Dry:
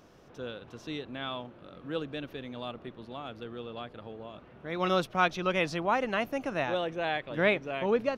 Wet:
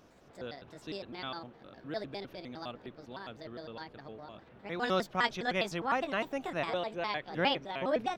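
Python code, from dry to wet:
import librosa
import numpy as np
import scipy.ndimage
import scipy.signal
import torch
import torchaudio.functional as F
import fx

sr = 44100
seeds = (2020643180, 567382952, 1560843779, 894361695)

y = fx.pitch_trill(x, sr, semitones=5.0, every_ms=102)
y = F.gain(torch.from_numpy(y), -3.0).numpy()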